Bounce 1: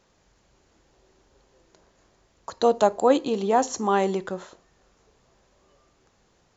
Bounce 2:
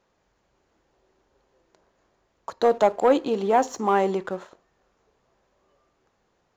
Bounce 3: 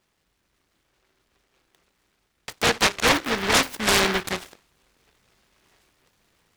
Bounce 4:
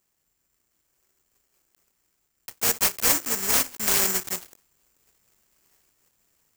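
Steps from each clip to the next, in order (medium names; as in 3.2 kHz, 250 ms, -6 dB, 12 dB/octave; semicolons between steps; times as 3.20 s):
treble shelf 3.3 kHz -11.5 dB; waveshaping leveller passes 1; bass shelf 270 Hz -7.5 dB
gain riding 2 s; delay time shaken by noise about 1.4 kHz, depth 0.44 ms
block-companded coder 3-bit; careless resampling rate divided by 6×, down filtered, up zero stuff; trim -9 dB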